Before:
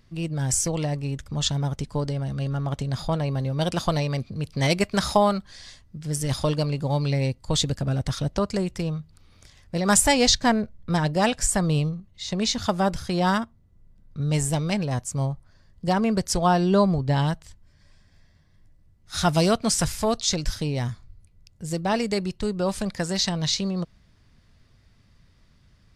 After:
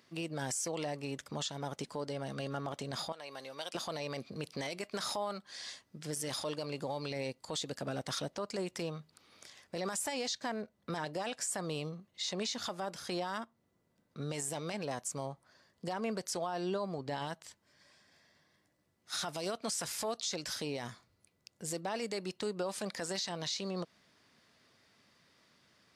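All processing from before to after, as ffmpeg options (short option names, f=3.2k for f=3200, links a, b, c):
-filter_complex "[0:a]asettb=1/sr,asplit=3[a][b][c];[a]atrim=end=3.124[d];[b]atrim=start=3.12:end=3.75,asetpts=PTS-STARTPTS,afade=t=in:d=0.004:c=qsin,afade=t=out:st=0.626:d=0.004:c=qsin,highpass=f=1.5k:p=1,acompressor=threshold=-40dB:ratio=2:attack=3.2:release=140:knee=1:detection=peak[e];[c]atrim=start=3.746[f];[d][e]acrossfade=d=0.004:c1=hsin:c2=qsin[g];[g][f]acrossfade=d=0.004:c1=qsin:c2=hsin,highpass=330,acompressor=threshold=-34dB:ratio=2.5,alimiter=level_in=3dB:limit=-24dB:level=0:latency=1:release=20,volume=-3dB"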